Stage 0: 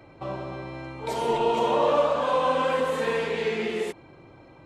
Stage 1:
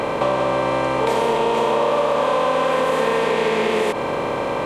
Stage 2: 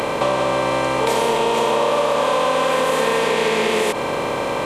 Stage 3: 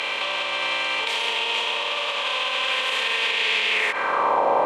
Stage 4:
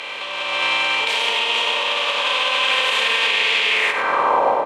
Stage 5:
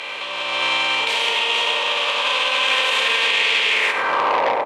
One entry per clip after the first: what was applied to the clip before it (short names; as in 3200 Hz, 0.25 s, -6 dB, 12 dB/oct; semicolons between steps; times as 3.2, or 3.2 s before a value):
per-bin compression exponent 0.4; compressor, threshold -23 dBFS, peak gain reduction 9 dB; gain +7.5 dB
high shelf 3600 Hz +10 dB
limiter -11.5 dBFS, peak gain reduction 5 dB; band-pass sweep 2900 Hz -> 780 Hz, 3.66–4.45; gain +8.5 dB
AGC gain up to 10.5 dB; on a send: echo 98 ms -8.5 dB; on the sum: gain -4 dB
doubler 15 ms -10.5 dB; core saturation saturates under 1700 Hz